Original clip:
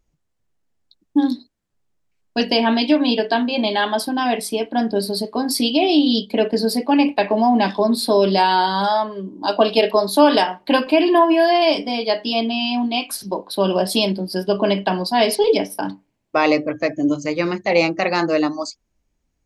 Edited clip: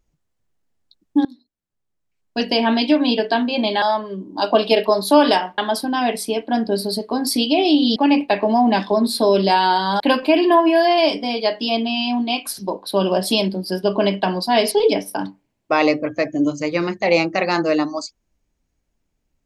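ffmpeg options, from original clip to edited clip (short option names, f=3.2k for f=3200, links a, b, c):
-filter_complex "[0:a]asplit=6[a][b][c][d][e][f];[a]atrim=end=1.25,asetpts=PTS-STARTPTS,afade=t=out:st=1.246:d=0.004:c=hsin:silence=0.0630957[g];[b]atrim=start=1.25:end=3.822,asetpts=PTS-STARTPTS,afade=t=in:d=1.48:silence=0.0630957[h];[c]atrim=start=8.878:end=10.642[i];[d]atrim=start=3.818:end=6.202[j];[e]atrim=start=6.838:end=8.882[k];[f]atrim=start=10.638[l];[g][h]concat=n=2:v=0:a=1[m];[m][i]acrossfade=d=0.004:c1=hsin:c2=hsin[n];[n][j]acrossfade=d=0.004:c1=hsin:c2=hsin[o];[o][k]acrossfade=d=0.004:c1=hsin:c2=hsin[p];[p][l]acrossfade=d=0.004:c1=hsin:c2=hsin"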